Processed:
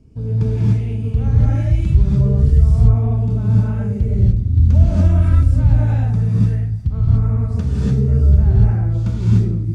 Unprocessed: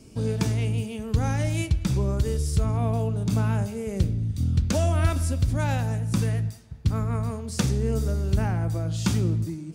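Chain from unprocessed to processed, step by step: RIAA curve playback; non-linear reverb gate 0.32 s rising, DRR -7.5 dB; gain -10 dB

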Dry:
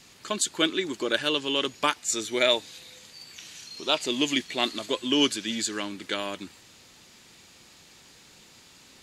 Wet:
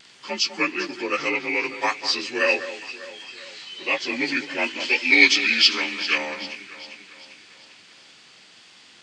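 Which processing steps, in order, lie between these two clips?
inharmonic rescaling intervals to 88%; HPF 110 Hz; tilt +1.5 dB/oct; vibrato 1.4 Hz 22 cents; 4.8–6.18 weighting filter D; echo with dull and thin repeats by turns 0.198 s, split 2100 Hz, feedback 70%, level -11 dB; gain +3 dB

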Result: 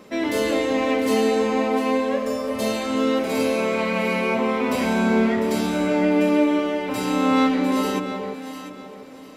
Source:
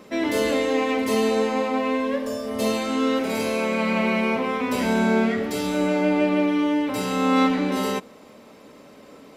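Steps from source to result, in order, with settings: echo with dull and thin repeats by turns 0.35 s, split 960 Hz, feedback 53%, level -4.5 dB

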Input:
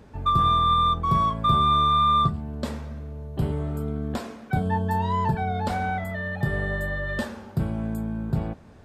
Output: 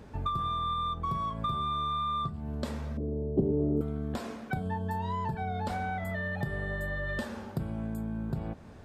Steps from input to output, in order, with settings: compressor, threshold -30 dBFS, peak gain reduction 13.5 dB; 2.97–3.81 EQ curve 120 Hz 0 dB, 370 Hz +15 dB, 1600 Hz -22 dB

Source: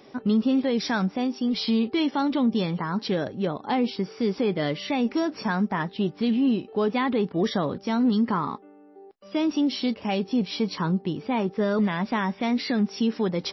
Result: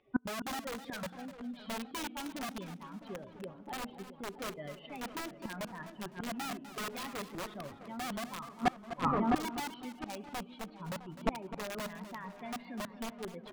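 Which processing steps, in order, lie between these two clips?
per-bin expansion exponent 2; steep low-pass 3200 Hz 36 dB/oct; spring tank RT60 1 s, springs 33 ms, chirp 30 ms, DRR 15 dB; wrapped overs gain 22 dB; darkening echo 0.66 s, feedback 66%, low-pass 1600 Hz, level -12.5 dB; flipped gate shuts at -33 dBFS, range -29 dB; warbling echo 0.252 s, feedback 30%, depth 90 cents, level -13 dB; gain +16.5 dB

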